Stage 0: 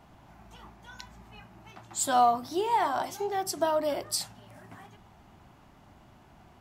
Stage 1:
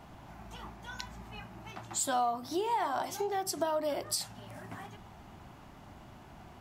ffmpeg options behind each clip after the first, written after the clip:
-af "acompressor=threshold=-37dB:ratio=2.5,volume=4dB"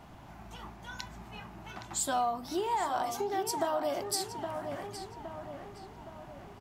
-filter_complex "[0:a]asplit=2[a][b];[b]adelay=816,lowpass=f=2.7k:p=1,volume=-6.5dB,asplit=2[c][d];[d]adelay=816,lowpass=f=2.7k:p=1,volume=0.52,asplit=2[e][f];[f]adelay=816,lowpass=f=2.7k:p=1,volume=0.52,asplit=2[g][h];[h]adelay=816,lowpass=f=2.7k:p=1,volume=0.52,asplit=2[i][j];[j]adelay=816,lowpass=f=2.7k:p=1,volume=0.52,asplit=2[k][l];[l]adelay=816,lowpass=f=2.7k:p=1,volume=0.52[m];[a][c][e][g][i][k][m]amix=inputs=7:normalize=0"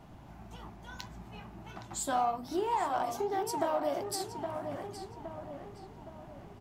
-filter_complex "[0:a]asplit=2[a][b];[b]adynamicsmooth=sensitivity=4:basefreq=680,volume=-2dB[c];[a][c]amix=inputs=2:normalize=0,flanger=delay=6.1:depth=8:regen=-67:speed=1.7:shape=sinusoidal"

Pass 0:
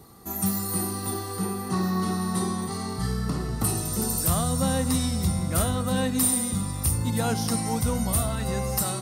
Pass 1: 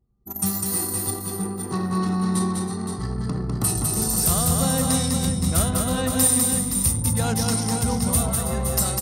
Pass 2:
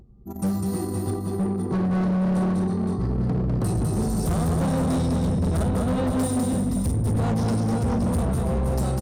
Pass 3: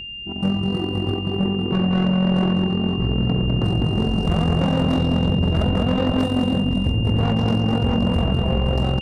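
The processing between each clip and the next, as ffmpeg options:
-filter_complex "[0:a]anlmdn=39.8,equalizer=f=7.1k:w=0.51:g=5.5,asplit=2[a][b];[b]aecho=0:1:201|324|519:0.668|0.282|0.422[c];[a][c]amix=inputs=2:normalize=0"
-af "firequalizer=gain_entry='entry(290,0);entry(1600,-13);entry(13000,-25)':delay=0.05:min_phase=1,acompressor=mode=upward:threshold=-44dB:ratio=2.5,asoftclip=type=hard:threshold=-25.5dB,volume=5.5dB"
-af "tremolo=f=44:d=0.571,adynamicsmooth=sensitivity=4.5:basefreq=1.4k,aeval=exprs='val(0)+0.0141*sin(2*PI*2800*n/s)':c=same,volume=6dB"

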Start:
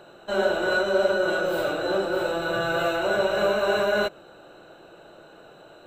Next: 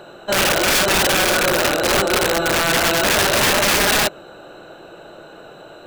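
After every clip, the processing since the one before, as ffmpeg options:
-af "aeval=exprs='(mod(9.44*val(0)+1,2)-1)/9.44':c=same,volume=8.5dB"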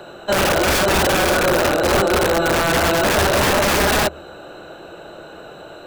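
-filter_complex "[0:a]equalizer=f=75:w=6.9:g=12.5,acrossover=split=160|1400[a][b][c];[c]alimiter=limit=-12dB:level=0:latency=1:release=100[d];[a][b][d]amix=inputs=3:normalize=0,volume=2.5dB"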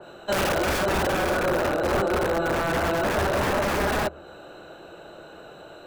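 -af "adynamicequalizer=threshold=0.02:dfrequency=2400:dqfactor=0.7:tfrequency=2400:tqfactor=0.7:attack=5:release=100:ratio=0.375:range=4:mode=cutabove:tftype=highshelf,volume=-6.5dB"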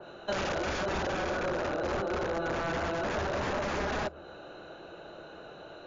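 -af "acompressor=threshold=-26dB:ratio=4,volume=-2.5dB" -ar 16000 -c:a libmp3lame -b:a 64k

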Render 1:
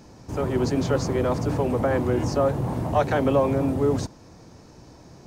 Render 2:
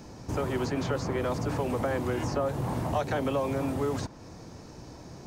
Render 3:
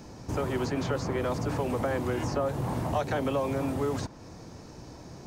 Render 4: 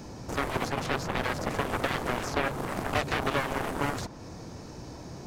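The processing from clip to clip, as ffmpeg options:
-filter_complex "[0:a]acrossover=split=860|3000[a][b][c];[a]acompressor=threshold=-31dB:ratio=4[d];[b]acompressor=threshold=-38dB:ratio=4[e];[c]acompressor=threshold=-48dB:ratio=4[f];[d][e][f]amix=inputs=3:normalize=0,volume=2dB"
-af anull
-af "aeval=exprs='0.168*(cos(1*acos(clip(val(0)/0.168,-1,1)))-cos(1*PI/2))+0.0596*(cos(7*acos(clip(val(0)/0.168,-1,1)))-cos(7*PI/2))':c=same"

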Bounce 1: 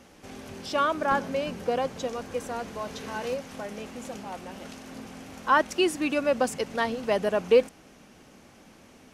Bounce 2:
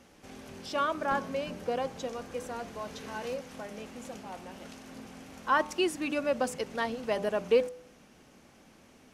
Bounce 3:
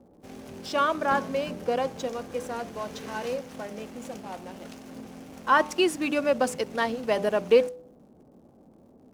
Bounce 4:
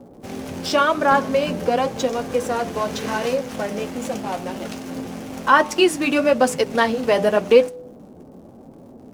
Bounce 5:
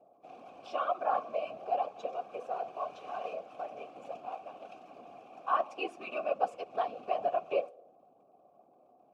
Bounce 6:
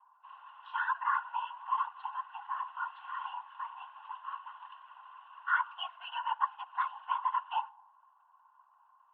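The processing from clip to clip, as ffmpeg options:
-af "bandreject=f=99.76:t=h:w=4,bandreject=f=199.52:t=h:w=4,bandreject=f=299.28:t=h:w=4,bandreject=f=399.04:t=h:w=4,bandreject=f=498.8:t=h:w=4,bandreject=f=598.56:t=h:w=4,bandreject=f=698.32:t=h:w=4,bandreject=f=798.08:t=h:w=4,bandreject=f=897.84:t=h:w=4,bandreject=f=997.6:t=h:w=4,bandreject=f=1.09736k:t=h:w=4,bandreject=f=1.19712k:t=h:w=4,bandreject=f=1.29688k:t=h:w=4,volume=-4.5dB"
-filter_complex "[0:a]lowshelf=f=64:g=-9,acrossover=split=810[a][b];[b]aeval=exprs='sgn(val(0))*max(abs(val(0))-0.00141,0)':c=same[c];[a][c]amix=inputs=2:normalize=0,volume=5.5dB"
-filter_complex "[0:a]asplit=2[a][b];[b]acompressor=threshold=-32dB:ratio=6,volume=2.5dB[c];[a][c]amix=inputs=2:normalize=0,flanger=delay=7.1:depth=4.5:regen=-46:speed=0.91:shape=sinusoidal,volume=8.5dB"
-filter_complex "[0:a]afftfilt=real='hypot(re,im)*cos(2*PI*random(0))':imag='hypot(re,im)*sin(2*PI*random(1))':win_size=512:overlap=0.75,asplit=3[a][b][c];[a]bandpass=f=730:t=q:w=8,volume=0dB[d];[b]bandpass=f=1.09k:t=q:w=8,volume=-6dB[e];[c]bandpass=f=2.44k:t=q:w=8,volume=-9dB[f];[d][e][f]amix=inputs=3:normalize=0"
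-af "highpass=f=550:t=q:w=0.5412,highpass=f=550:t=q:w=1.307,lowpass=f=2.9k:t=q:w=0.5176,lowpass=f=2.9k:t=q:w=0.7071,lowpass=f=2.9k:t=q:w=1.932,afreqshift=330"

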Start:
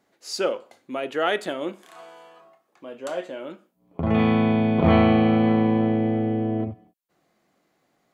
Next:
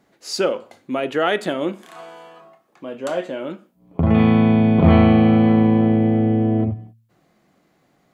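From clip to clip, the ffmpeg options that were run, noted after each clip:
-filter_complex "[0:a]bass=f=250:g=7,treble=f=4k:g=-2,bandreject=f=113.1:t=h:w=4,bandreject=f=226.2:t=h:w=4,asplit=2[a][b];[b]acompressor=threshold=-23dB:ratio=6,volume=1.5dB[c];[a][c]amix=inputs=2:normalize=0,volume=-1dB"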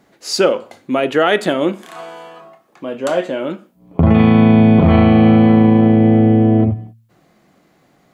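-af "alimiter=level_in=7.5dB:limit=-1dB:release=50:level=0:latency=1,volume=-1dB"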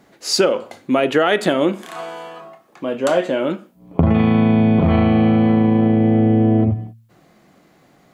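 -af "acompressor=threshold=-13dB:ratio=6,volume=2dB"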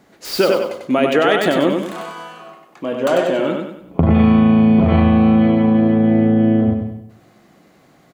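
-filter_complex "[0:a]acrossover=split=4500[a][b];[b]aeval=exprs='(mod(22.4*val(0)+1,2)-1)/22.4':c=same[c];[a][c]amix=inputs=2:normalize=0,aecho=1:1:96|192|288|384|480:0.631|0.259|0.106|0.0435|0.0178"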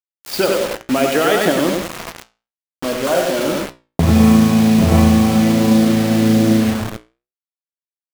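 -af "aphaser=in_gain=1:out_gain=1:delay=1.4:decay=0.21:speed=1.4:type=sinusoidal,acrusher=bits=3:mix=0:aa=0.000001,flanger=delay=9.2:depth=8.5:regen=-69:speed=0.64:shape=triangular,volume=3.5dB"

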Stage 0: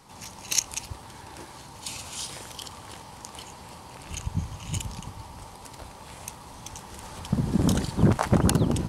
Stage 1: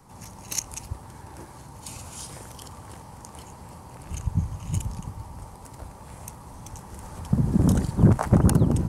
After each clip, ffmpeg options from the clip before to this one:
-filter_complex "[0:a]acrossover=split=190|3400[a][b][c];[a]acontrast=29[d];[d][b][c]amix=inputs=3:normalize=0,equalizer=f=3.5k:w=0.86:g=-10.5"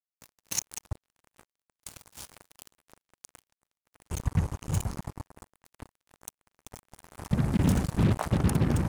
-af "alimiter=limit=-12.5dB:level=0:latency=1:release=321,acrusher=bits=4:mix=0:aa=0.5,volume=-1.5dB"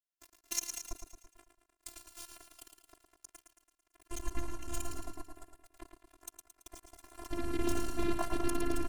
-filter_complex "[0:a]afftfilt=real='hypot(re,im)*cos(PI*b)':imag='0':win_size=512:overlap=0.75,asplit=2[a][b];[b]aecho=0:1:111|222|333|444|555|666:0.447|0.237|0.125|0.0665|0.0352|0.0187[c];[a][c]amix=inputs=2:normalize=0,volume=-1dB"

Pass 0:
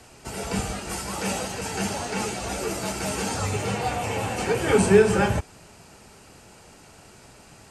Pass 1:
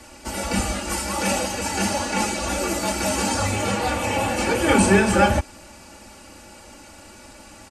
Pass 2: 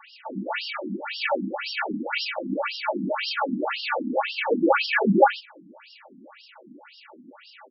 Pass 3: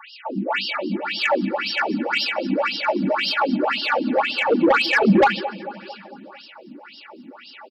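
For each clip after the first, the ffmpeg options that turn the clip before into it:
-af "aecho=1:1:3.5:0.89,volume=3dB"
-af "afftfilt=real='re*between(b*sr/1024,220*pow(4000/220,0.5+0.5*sin(2*PI*1.9*pts/sr))/1.41,220*pow(4000/220,0.5+0.5*sin(2*PI*1.9*pts/sr))*1.41)':imag='im*between(b*sr/1024,220*pow(4000/220,0.5+0.5*sin(2*PI*1.9*pts/sr))/1.41,220*pow(4000/220,0.5+0.5*sin(2*PI*1.9*pts/sr))*1.41)':win_size=1024:overlap=0.75,volume=4.5dB"
-filter_complex "[0:a]aecho=1:1:224|448|672|896|1120:0.119|0.0654|0.036|0.0198|0.0109,acrossover=split=170[a][b];[b]asoftclip=type=tanh:threshold=-16.5dB[c];[a][c]amix=inputs=2:normalize=0,volume=6.5dB"

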